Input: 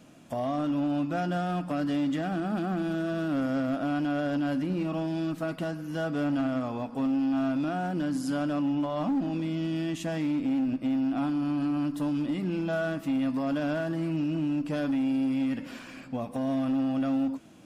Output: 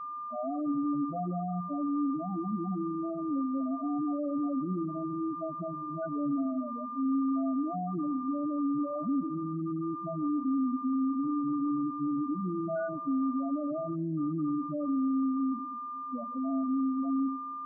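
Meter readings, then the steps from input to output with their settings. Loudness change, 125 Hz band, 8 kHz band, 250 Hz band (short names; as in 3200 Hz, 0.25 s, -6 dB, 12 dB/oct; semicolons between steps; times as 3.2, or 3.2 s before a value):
-2.5 dB, -6.5 dB, n/a, -2.5 dB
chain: whine 1200 Hz -34 dBFS; loudest bins only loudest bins 4; dark delay 0.138 s, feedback 56%, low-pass 610 Hz, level -21 dB; gain -2 dB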